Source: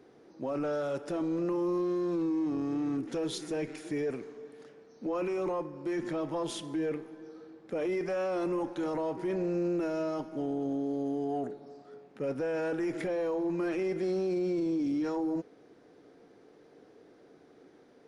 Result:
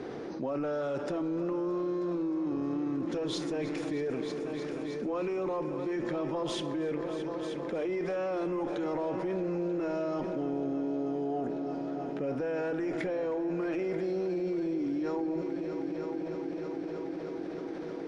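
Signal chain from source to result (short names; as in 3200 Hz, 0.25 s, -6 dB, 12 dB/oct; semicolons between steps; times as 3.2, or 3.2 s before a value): air absorption 80 m; multi-head echo 0.312 s, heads all three, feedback 61%, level -17 dB; fast leveller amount 70%; gain -3 dB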